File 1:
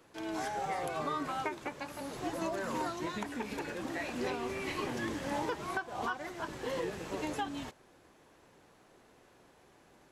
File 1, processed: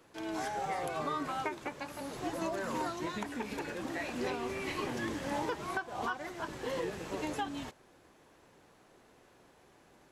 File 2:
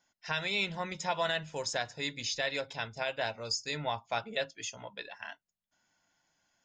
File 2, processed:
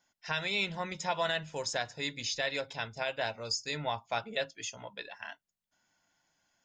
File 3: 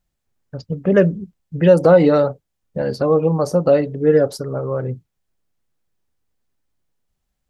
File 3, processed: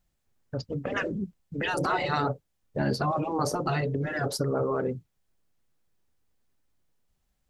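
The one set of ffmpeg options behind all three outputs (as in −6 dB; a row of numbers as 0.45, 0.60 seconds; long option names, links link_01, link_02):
-af "afftfilt=real='re*lt(hypot(re,im),0.501)':imag='im*lt(hypot(re,im),0.501)':win_size=1024:overlap=0.75"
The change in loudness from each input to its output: 0.0, 0.0, −13.0 LU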